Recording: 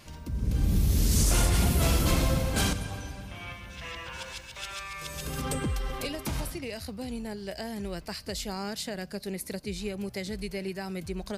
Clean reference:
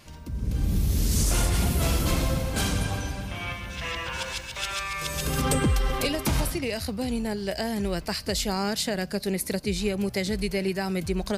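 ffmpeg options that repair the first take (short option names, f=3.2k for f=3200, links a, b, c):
-af "asetnsamples=n=441:p=0,asendcmd='2.73 volume volume 7.5dB',volume=0dB"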